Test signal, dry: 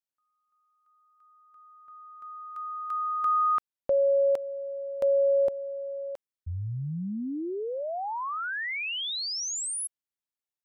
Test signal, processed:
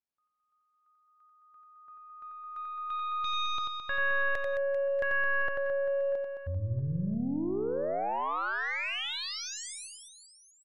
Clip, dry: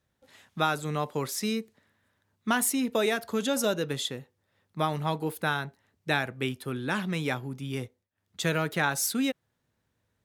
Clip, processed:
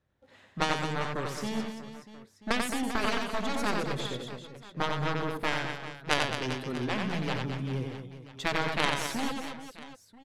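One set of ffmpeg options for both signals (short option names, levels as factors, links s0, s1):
-af "aemphasis=mode=reproduction:type=75fm,aeval=exprs='0.251*(cos(1*acos(clip(val(0)/0.251,-1,1)))-cos(1*PI/2))+0.112*(cos(3*acos(clip(val(0)/0.251,-1,1)))-cos(3*PI/2))+0.02*(cos(5*acos(clip(val(0)/0.251,-1,1)))-cos(5*PI/2))+0.00562*(cos(6*acos(clip(val(0)/0.251,-1,1)))-cos(6*PI/2))+0.0224*(cos(7*acos(clip(val(0)/0.251,-1,1)))-cos(7*PI/2))':c=same,aecho=1:1:90|216|392.4|639.4|985.1:0.631|0.398|0.251|0.158|0.1,volume=1.68"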